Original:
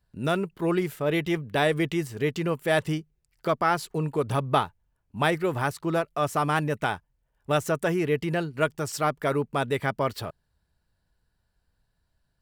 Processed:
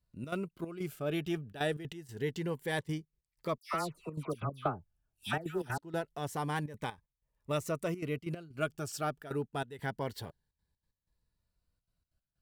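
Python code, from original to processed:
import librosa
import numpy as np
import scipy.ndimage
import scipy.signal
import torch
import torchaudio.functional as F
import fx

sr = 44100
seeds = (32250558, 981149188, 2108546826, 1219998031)

y = fx.dispersion(x, sr, late='lows', ms=127.0, hz=1800.0, at=(3.58, 5.78))
y = fx.step_gate(y, sr, bpm=187, pattern='xxx.xx.x..xxxxxx', floor_db=-12.0, edge_ms=4.5)
y = fx.notch_cascade(y, sr, direction='rising', hz=0.26)
y = F.gain(torch.from_numpy(y), -7.5).numpy()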